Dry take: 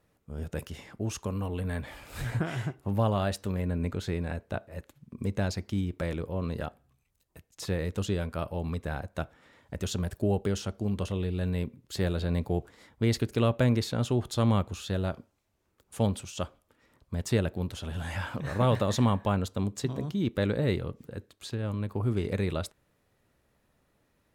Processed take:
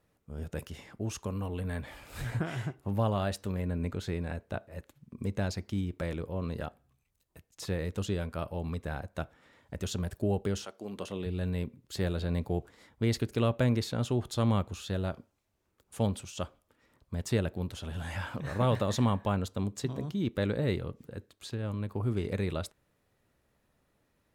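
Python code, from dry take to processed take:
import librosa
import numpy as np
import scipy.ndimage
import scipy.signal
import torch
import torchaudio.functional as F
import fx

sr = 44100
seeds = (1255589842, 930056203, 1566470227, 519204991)

y = fx.highpass(x, sr, hz=fx.line((10.64, 550.0), (11.25, 150.0)), slope=12, at=(10.64, 11.25), fade=0.02)
y = F.gain(torch.from_numpy(y), -2.5).numpy()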